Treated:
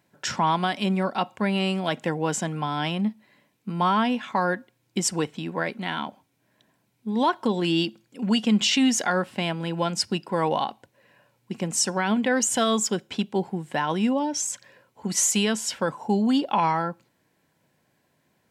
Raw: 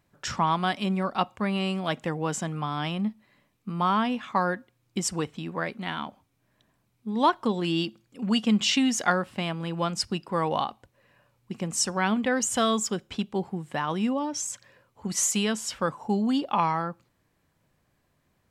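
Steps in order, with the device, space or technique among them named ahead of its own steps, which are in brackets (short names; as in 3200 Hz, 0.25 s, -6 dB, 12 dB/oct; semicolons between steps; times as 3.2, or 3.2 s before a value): PA system with an anti-feedback notch (HPF 150 Hz 12 dB/oct; Butterworth band-stop 1200 Hz, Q 7.1; limiter -16.5 dBFS, peak gain reduction 6 dB); gain +4 dB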